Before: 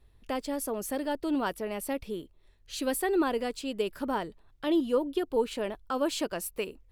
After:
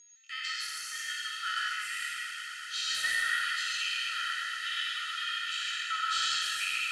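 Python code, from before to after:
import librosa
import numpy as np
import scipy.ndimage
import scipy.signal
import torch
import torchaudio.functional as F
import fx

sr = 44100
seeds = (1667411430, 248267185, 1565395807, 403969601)

p1 = fx.spec_trails(x, sr, decay_s=1.99)
p2 = scipy.signal.sosfilt(scipy.signal.cheby1(10, 1.0, 1300.0, 'highpass', fs=sr, output='sos'), p1)
p3 = fx.high_shelf(p2, sr, hz=2000.0, db=10.5)
p4 = p3 + 0.82 * np.pad(p3, (int(1.6 * sr / 1000.0), 0))[:len(p3)]
p5 = p4 + 10.0 ** (-38.0 / 20.0) * np.sin(2.0 * np.pi * 6600.0 * np.arange(len(p4)) / sr)
p6 = 10.0 ** (-10.5 / 20.0) * np.tanh(p5 / 10.0 ** (-10.5 / 20.0))
p7 = fx.air_absorb(p6, sr, metres=130.0)
p8 = p7 + fx.echo_swell(p7, sr, ms=117, loudest=8, wet_db=-18, dry=0)
p9 = fx.rev_gated(p8, sr, seeds[0], gate_ms=170, shape='rising', drr_db=0.0)
y = p9 * 10.0 ** (-5.5 / 20.0)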